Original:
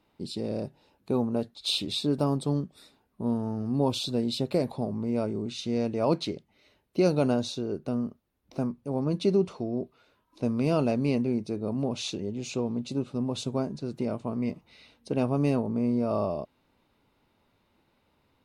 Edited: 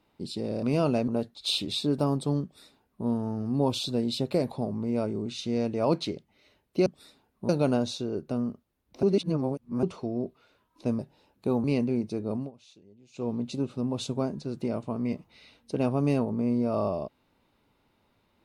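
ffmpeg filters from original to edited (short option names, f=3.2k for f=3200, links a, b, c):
-filter_complex "[0:a]asplit=11[a][b][c][d][e][f][g][h][i][j][k];[a]atrim=end=0.632[l];[b]atrim=start=10.558:end=11.012[m];[c]atrim=start=1.278:end=7.062[n];[d]atrim=start=2.628:end=3.262[o];[e]atrim=start=7.058:end=8.602[p];[f]atrim=start=8.598:end=9.402,asetpts=PTS-STARTPTS,areverse[q];[g]atrim=start=9.398:end=10.562[r];[h]atrim=start=0.628:end=1.282[s];[i]atrim=start=11.008:end=11.88,asetpts=PTS-STARTPTS,afade=t=out:st=0.722:d=0.15:silence=0.0749894[t];[j]atrim=start=11.88:end=12.5,asetpts=PTS-STARTPTS,volume=-22.5dB[u];[k]atrim=start=12.5,asetpts=PTS-STARTPTS,afade=t=in:d=0.15:silence=0.0749894[v];[l][m]acrossfade=d=0.004:c1=hsin:c2=hsin[w];[w][n]acrossfade=d=0.004:c1=hsin:c2=hsin[x];[x][o]acrossfade=d=0.004:c1=hsin:c2=hsin[y];[y][p]acrossfade=d=0.004:c1=hsin:c2=hsin[z];[z][q]acrossfade=d=0.004:c1=hsin:c2=hsin[aa];[aa][r]acrossfade=d=0.004:c1=hsin:c2=hsin[ab];[ab][s]acrossfade=d=0.004:c1=hsin:c2=hsin[ac];[t][u][v]concat=n=3:v=0:a=1[ad];[ac][ad]acrossfade=d=0.004:c1=hsin:c2=hsin"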